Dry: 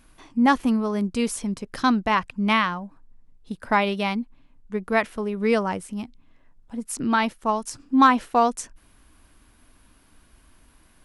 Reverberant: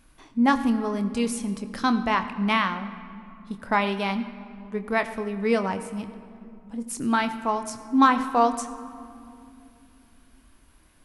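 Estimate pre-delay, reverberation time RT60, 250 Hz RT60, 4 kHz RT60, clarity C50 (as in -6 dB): 26 ms, 2.7 s, 3.9 s, 1.5 s, 12.0 dB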